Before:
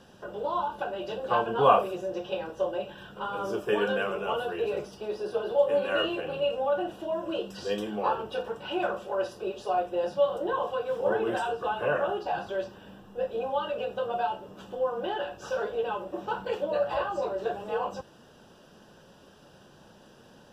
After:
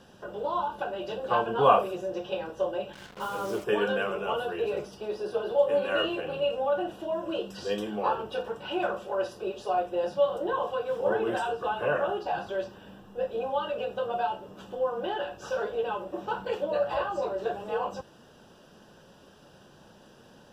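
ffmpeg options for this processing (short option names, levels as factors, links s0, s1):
-filter_complex "[0:a]asettb=1/sr,asplit=3[s0][s1][s2];[s0]atrim=end=2.934[s3];[s1]atrim=start=2.93:end=3.64,asetpts=PTS-STARTPTS,afade=t=in:d=0.004:c=qsin,afade=t=out:st=0.706:d=0.004:c=qsin,acrusher=bits=6:mix=0:aa=0.5[s4];[s2]atrim=start=3.636[s5];[s3][s4]acrossfade=d=0.004:c1=hsin:c2=qsin[s6];[s6][s5]acrossfade=d=0.004:c1=qsin:c2=hsin"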